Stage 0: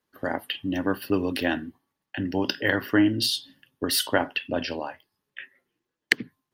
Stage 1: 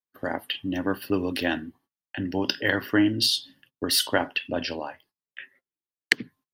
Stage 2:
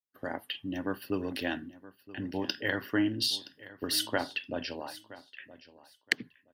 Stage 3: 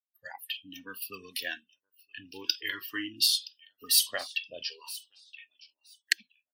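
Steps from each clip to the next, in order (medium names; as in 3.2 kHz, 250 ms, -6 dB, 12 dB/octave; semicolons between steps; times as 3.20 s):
gate -57 dBFS, range -23 dB; dynamic bell 4.9 kHz, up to +4 dB, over -36 dBFS, Q 0.74; trim -1 dB
feedback delay 971 ms, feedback 19%, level -18 dB; trim -7 dB
spectral noise reduction 28 dB; tilt EQ +4.5 dB/octave; Shepard-style flanger falling 0.35 Hz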